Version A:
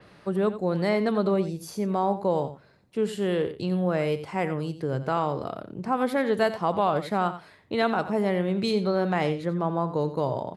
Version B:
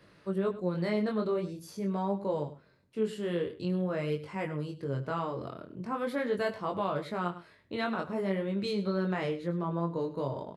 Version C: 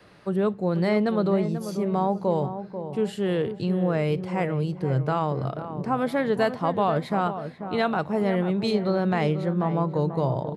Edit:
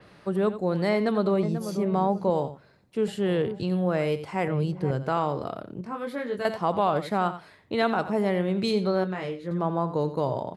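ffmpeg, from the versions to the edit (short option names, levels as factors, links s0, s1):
-filter_complex "[2:a]asplit=3[s0][s1][s2];[1:a]asplit=2[s3][s4];[0:a]asplit=6[s5][s6][s7][s8][s9][s10];[s5]atrim=end=1.432[s11];[s0]atrim=start=1.428:end=2.302[s12];[s6]atrim=start=2.298:end=3.082[s13];[s1]atrim=start=3.078:end=3.632[s14];[s7]atrim=start=3.628:end=4.482[s15];[s2]atrim=start=4.478:end=4.912[s16];[s8]atrim=start=4.908:end=5.812[s17];[s3]atrim=start=5.808:end=6.452[s18];[s9]atrim=start=6.448:end=9.042[s19];[s4]atrim=start=9.038:end=9.512[s20];[s10]atrim=start=9.508[s21];[s11][s12]acrossfade=d=0.004:c1=hsin:c2=hsin[s22];[s22][s13]acrossfade=d=0.004:c1=hsin:c2=hsin[s23];[s23][s14]acrossfade=d=0.004:c1=hsin:c2=hsin[s24];[s24][s15]acrossfade=d=0.004:c1=hsin:c2=hsin[s25];[s25][s16]acrossfade=d=0.004:c1=hsin:c2=hsin[s26];[s26][s17]acrossfade=d=0.004:c1=hsin:c2=hsin[s27];[s27][s18]acrossfade=d=0.004:c1=hsin:c2=hsin[s28];[s28][s19]acrossfade=d=0.004:c1=hsin:c2=hsin[s29];[s29][s20]acrossfade=d=0.004:c1=hsin:c2=hsin[s30];[s30][s21]acrossfade=d=0.004:c1=hsin:c2=hsin"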